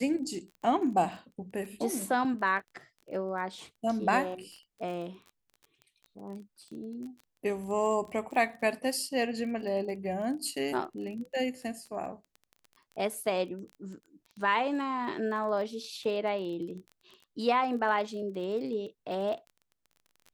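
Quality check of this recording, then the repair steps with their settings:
surface crackle 20 per second −40 dBFS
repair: click removal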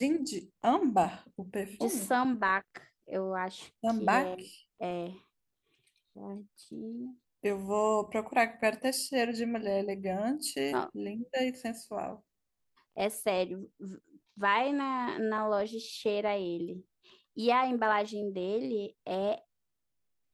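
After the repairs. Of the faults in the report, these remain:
none of them is left

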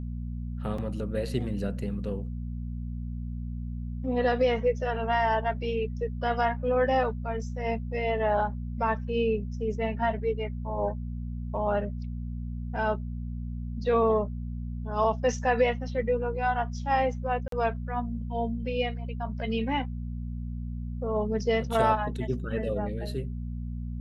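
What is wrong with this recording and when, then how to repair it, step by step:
mains hum 60 Hz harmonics 4 −34 dBFS
0:00.78: drop-out 4.3 ms
0:17.48–0:17.52: drop-out 43 ms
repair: hum removal 60 Hz, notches 4
repair the gap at 0:00.78, 4.3 ms
repair the gap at 0:17.48, 43 ms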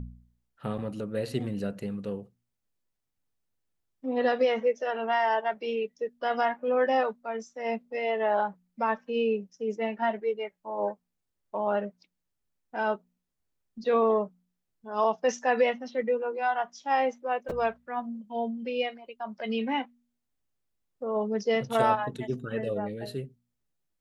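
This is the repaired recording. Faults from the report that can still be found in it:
none of them is left

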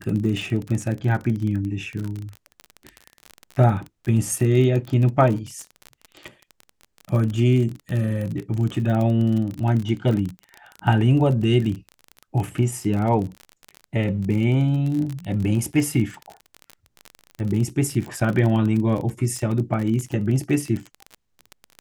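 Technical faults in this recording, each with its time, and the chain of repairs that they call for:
surface crackle 32 per second −26 dBFS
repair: click removal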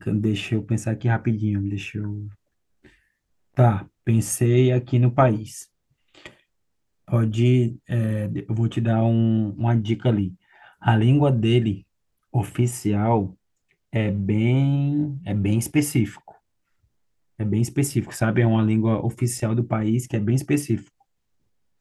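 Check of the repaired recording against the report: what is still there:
none of them is left

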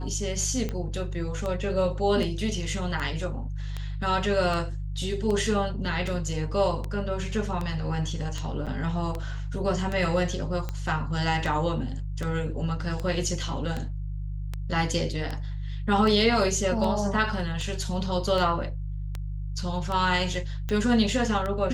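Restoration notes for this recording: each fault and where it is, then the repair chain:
mains hum 50 Hz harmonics 3 −32 dBFS
scratch tick 78 rpm −18 dBFS
0:08.66–0:08.67: drop-out 7.1 ms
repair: click removal
hum removal 50 Hz, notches 3
repair the gap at 0:08.66, 7.1 ms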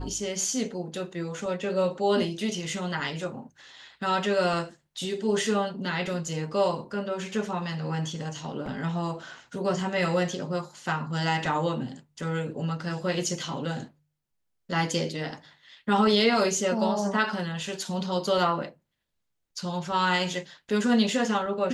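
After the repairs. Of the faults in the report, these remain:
none of them is left

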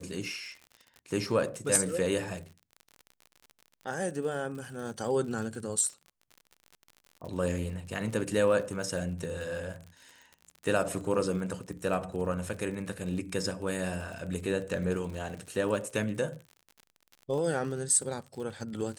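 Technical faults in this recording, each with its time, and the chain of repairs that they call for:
surface crackle 57 per second −39 dBFS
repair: click removal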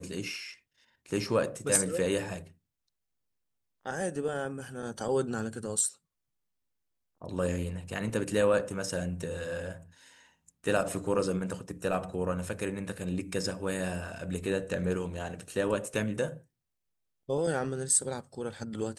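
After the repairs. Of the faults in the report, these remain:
none of them is left

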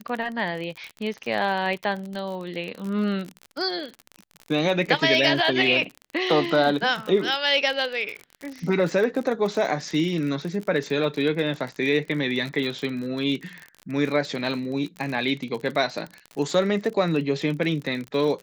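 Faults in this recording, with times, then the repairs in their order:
surface crackle 40 per second −29 dBFS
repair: click removal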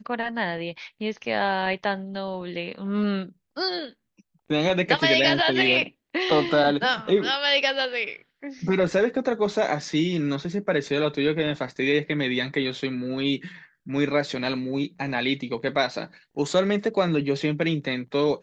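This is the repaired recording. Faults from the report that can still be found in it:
none of them is left

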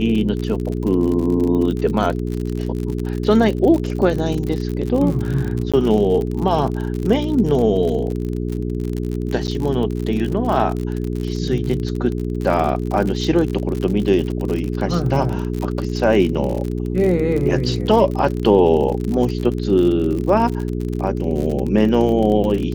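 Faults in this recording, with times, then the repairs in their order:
surface crackle 50 per second −23 dBFS
mains hum 60 Hz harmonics 7 −23 dBFS
0:05.72–0:05.74: drop-out 16 ms
0:09.47–0:09.48: drop-out 9.6 ms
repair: click removal
hum removal 60 Hz, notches 7
repair the gap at 0:05.72, 16 ms
repair the gap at 0:09.47, 9.6 ms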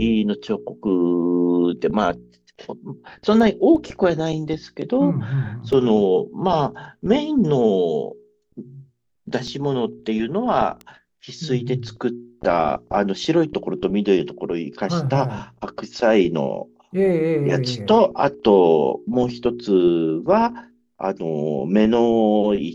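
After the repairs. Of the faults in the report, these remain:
none of them is left

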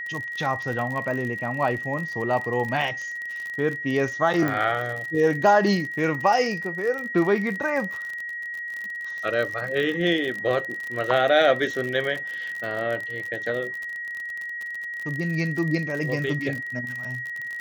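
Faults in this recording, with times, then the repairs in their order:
surface crackle 45 per second −29 dBFS
whistle 1,900 Hz −30 dBFS
0:04.48: click −14 dBFS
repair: click removal
notch filter 1,900 Hz, Q 30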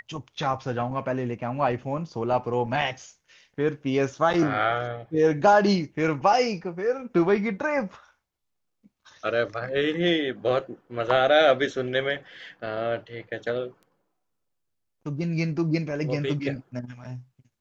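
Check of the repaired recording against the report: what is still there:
none of them is left

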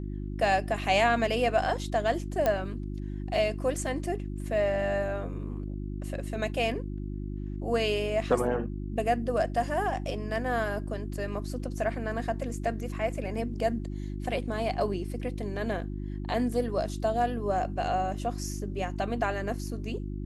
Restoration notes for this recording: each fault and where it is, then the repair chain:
mains hum 50 Hz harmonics 7 −35 dBFS
0:02.46: click −13 dBFS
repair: click removal
hum removal 50 Hz, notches 7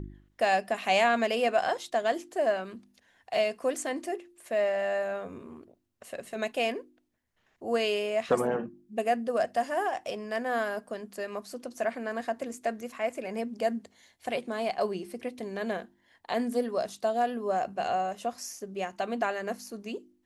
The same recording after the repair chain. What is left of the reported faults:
0:02.46: click

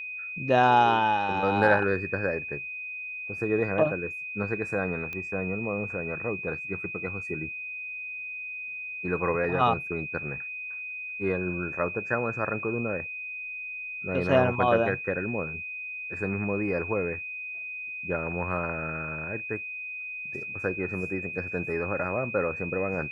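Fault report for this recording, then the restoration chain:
whistle 2,500 Hz −34 dBFS
0:05.13: click −22 dBFS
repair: click removal
notch filter 2,500 Hz, Q 30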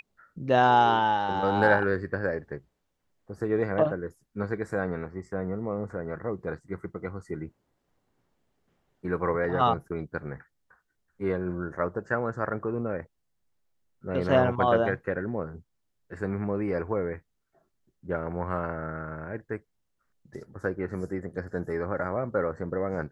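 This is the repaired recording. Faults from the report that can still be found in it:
none of them is left

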